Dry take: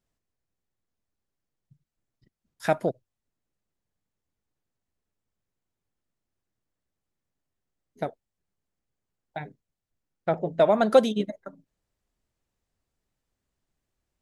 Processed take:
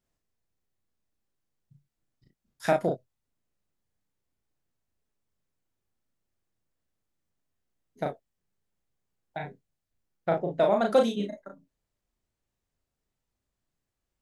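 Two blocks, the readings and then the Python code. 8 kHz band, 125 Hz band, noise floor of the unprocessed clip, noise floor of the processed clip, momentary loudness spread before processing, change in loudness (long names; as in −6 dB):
can't be measured, −1.5 dB, below −85 dBFS, −85 dBFS, 20 LU, −2.5 dB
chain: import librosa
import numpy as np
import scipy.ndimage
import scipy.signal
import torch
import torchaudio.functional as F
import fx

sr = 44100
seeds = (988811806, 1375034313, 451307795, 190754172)

p1 = fx.rider(x, sr, range_db=10, speed_s=0.5)
p2 = x + F.gain(torch.from_numpy(p1), -2.5).numpy()
p3 = fx.room_early_taps(p2, sr, ms=(35, 57), db=(-3.0, -14.0))
y = F.gain(torch.from_numpy(p3), -8.0).numpy()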